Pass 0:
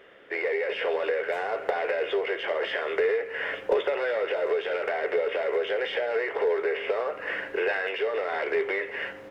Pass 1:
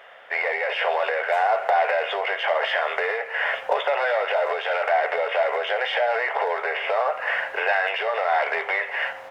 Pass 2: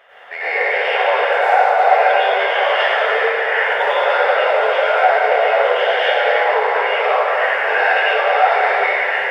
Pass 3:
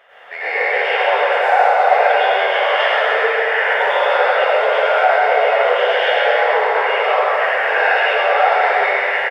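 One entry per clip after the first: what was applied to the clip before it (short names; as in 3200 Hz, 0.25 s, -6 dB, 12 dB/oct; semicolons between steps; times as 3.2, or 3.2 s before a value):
resonant low shelf 500 Hz -13 dB, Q 3; in parallel at -2 dB: limiter -20 dBFS, peak gain reduction 8.5 dB; on the sum: gain +1 dB
reverb RT60 2.7 s, pre-delay 88 ms, DRR -11.5 dB; gain -3.5 dB
echo 0.131 s -4.5 dB; gain -1 dB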